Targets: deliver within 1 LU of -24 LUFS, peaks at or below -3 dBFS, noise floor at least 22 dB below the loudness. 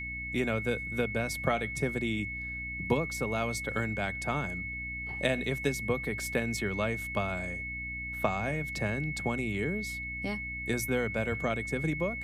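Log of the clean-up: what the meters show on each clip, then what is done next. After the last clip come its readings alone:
hum 60 Hz; harmonics up to 300 Hz; hum level -42 dBFS; steady tone 2200 Hz; tone level -36 dBFS; loudness -32.0 LUFS; peak -13.5 dBFS; loudness target -24.0 LUFS
-> notches 60/120/180/240/300 Hz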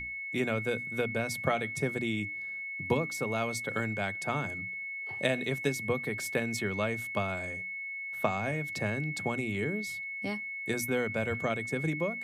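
hum none; steady tone 2200 Hz; tone level -36 dBFS
-> notch 2200 Hz, Q 30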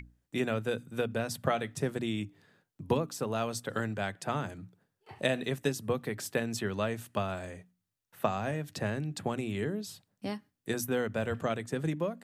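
steady tone none; loudness -34.0 LUFS; peak -13.5 dBFS; loudness target -24.0 LUFS
-> gain +10 dB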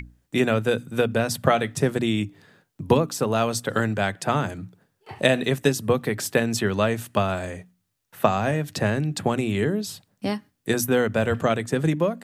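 loudness -24.0 LUFS; peak -3.5 dBFS; noise floor -74 dBFS

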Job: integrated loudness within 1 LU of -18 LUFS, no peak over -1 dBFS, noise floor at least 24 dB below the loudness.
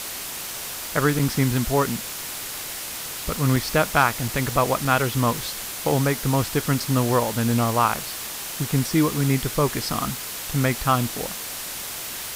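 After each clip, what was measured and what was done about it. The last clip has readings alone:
dropouts 5; longest dropout 3.6 ms; noise floor -33 dBFS; noise floor target -48 dBFS; loudness -23.5 LUFS; peak -5.5 dBFS; loudness target -18.0 LUFS
-> interpolate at 1.19/3.56/4.28/4.85/6.8, 3.6 ms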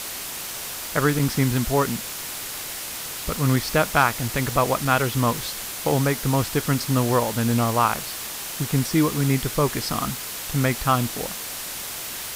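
dropouts 0; noise floor -33 dBFS; noise floor target -48 dBFS
-> denoiser 15 dB, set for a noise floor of -33 dBFS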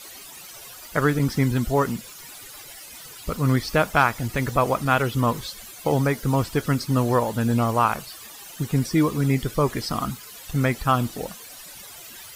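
noise floor -42 dBFS; noise floor target -47 dBFS
-> denoiser 6 dB, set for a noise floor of -42 dBFS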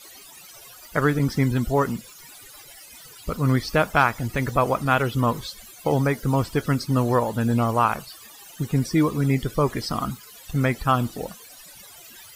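noise floor -46 dBFS; noise floor target -48 dBFS
-> denoiser 6 dB, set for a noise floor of -46 dBFS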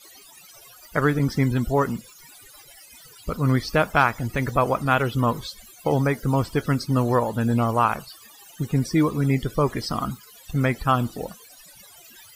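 noise floor -49 dBFS; loudness -23.5 LUFS; peak -5.5 dBFS; loudness target -18.0 LUFS
-> gain +5.5 dB; limiter -1 dBFS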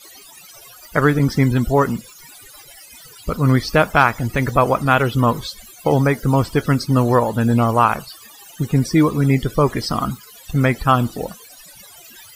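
loudness -18.0 LUFS; peak -1.0 dBFS; noise floor -43 dBFS

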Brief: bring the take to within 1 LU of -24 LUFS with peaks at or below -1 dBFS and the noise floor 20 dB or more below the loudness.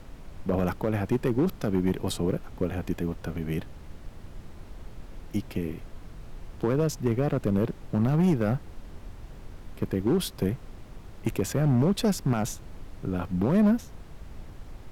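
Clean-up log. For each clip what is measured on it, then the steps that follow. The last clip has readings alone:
clipped 1.1%; flat tops at -17.0 dBFS; noise floor -46 dBFS; noise floor target -48 dBFS; loudness -28.0 LUFS; peak -17.0 dBFS; loudness target -24.0 LUFS
-> clip repair -17 dBFS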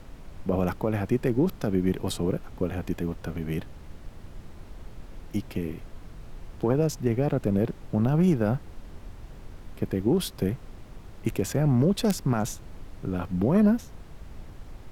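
clipped 0.0%; noise floor -46 dBFS; noise floor target -47 dBFS
-> noise print and reduce 6 dB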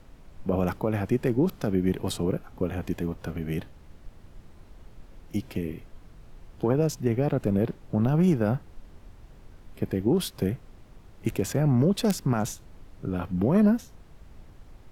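noise floor -51 dBFS; loudness -27.0 LUFS; peak -8.0 dBFS; loudness target -24.0 LUFS
-> gain +3 dB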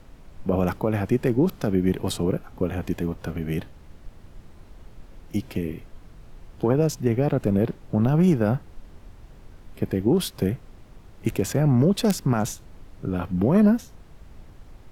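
loudness -24.0 LUFS; peak -5.0 dBFS; noise floor -48 dBFS

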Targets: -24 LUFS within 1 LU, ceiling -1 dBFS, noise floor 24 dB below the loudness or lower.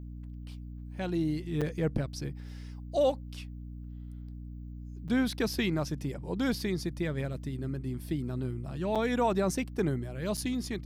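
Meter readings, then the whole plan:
dropouts 4; longest dropout 6.4 ms; hum 60 Hz; harmonics up to 300 Hz; hum level -40 dBFS; loudness -32.0 LUFS; peak -17.0 dBFS; loudness target -24.0 LUFS
-> interpolate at 1.61/5.08/8.95/10.37, 6.4 ms; notches 60/120/180/240/300 Hz; gain +8 dB

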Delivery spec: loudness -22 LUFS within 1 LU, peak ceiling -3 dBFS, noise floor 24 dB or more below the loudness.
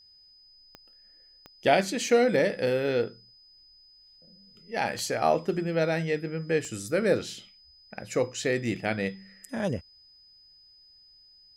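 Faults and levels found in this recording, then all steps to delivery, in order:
clicks 4; steady tone 5000 Hz; tone level -54 dBFS; loudness -27.5 LUFS; peak -7.5 dBFS; loudness target -22.0 LUFS
-> de-click; notch 5000 Hz, Q 30; gain +5.5 dB; limiter -3 dBFS

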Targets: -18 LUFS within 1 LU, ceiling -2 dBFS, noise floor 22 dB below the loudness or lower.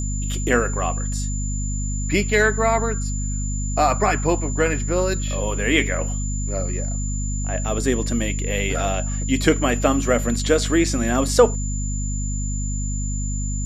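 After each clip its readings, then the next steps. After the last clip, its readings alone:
hum 50 Hz; harmonics up to 250 Hz; hum level -22 dBFS; steady tone 7100 Hz; tone level -31 dBFS; loudness -22.0 LUFS; peak -2.5 dBFS; loudness target -18.0 LUFS
-> de-hum 50 Hz, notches 5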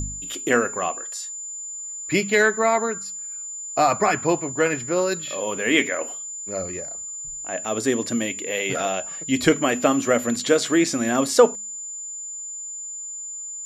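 hum none; steady tone 7100 Hz; tone level -31 dBFS
-> notch 7100 Hz, Q 30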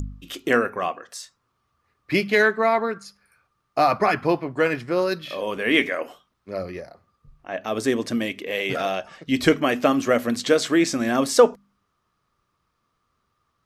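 steady tone none; loudness -22.5 LUFS; peak -3.0 dBFS; loudness target -18.0 LUFS
-> gain +4.5 dB; limiter -2 dBFS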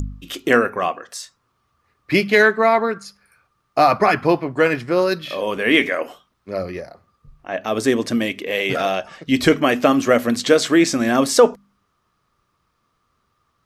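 loudness -18.0 LUFS; peak -2.0 dBFS; noise floor -69 dBFS

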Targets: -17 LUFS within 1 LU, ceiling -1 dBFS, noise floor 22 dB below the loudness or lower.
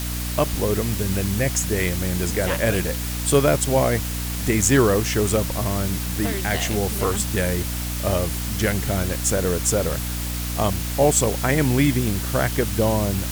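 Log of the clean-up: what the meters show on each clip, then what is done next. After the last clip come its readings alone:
hum 60 Hz; harmonics up to 300 Hz; hum level -26 dBFS; noise floor -27 dBFS; noise floor target -44 dBFS; loudness -21.5 LUFS; peak -4.0 dBFS; loudness target -17.0 LUFS
-> de-hum 60 Hz, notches 5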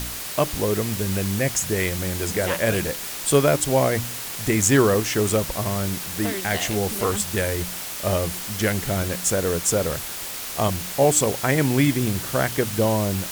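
hum none; noise floor -32 dBFS; noise floor target -45 dBFS
-> denoiser 13 dB, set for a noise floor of -32 dBFS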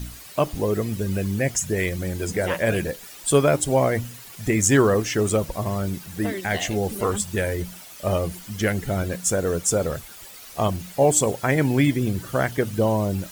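noise floor -43 dBFS; noise floor target -45 dBFS
-> denoiser 6 dB, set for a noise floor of -43 dBFS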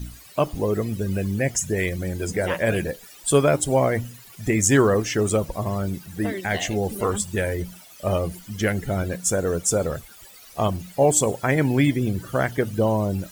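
noise floor -47 dBFS; loudness -23.0 LUFS; peak -4.0 dBFS; loudness target -17.0 LUFS
-> gain +6 dB; limiter -1 dBFS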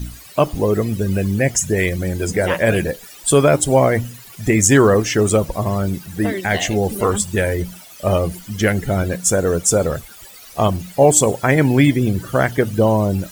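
loudness -17.5 LUFS; peak -1.0 dBFS; noise floor -41 dBFS

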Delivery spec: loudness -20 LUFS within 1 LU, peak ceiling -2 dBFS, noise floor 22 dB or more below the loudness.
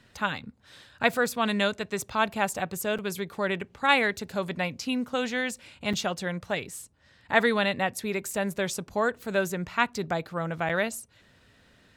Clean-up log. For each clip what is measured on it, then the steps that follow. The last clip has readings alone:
dropouts 3; longest dropout 6.1 ms; loudness -28.0 LUFS; peak -5.5 dBFS; loudness target -20.0 LUFS
-> interpolate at 2.98/5.93/10.69, 6.1 ms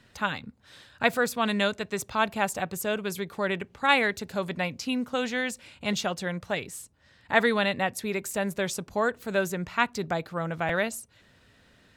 dropouts 0; loudness -28.0 LUFS; peak -5.5 dBFS; loudness target -20.0 LUFS
-> gain +8 dB; limiter -2 dBFS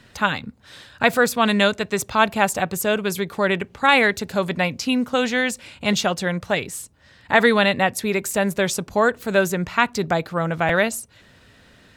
loudness -20.5 LUFS; peak -2.0 dBFS; noise floor -52 dBFS

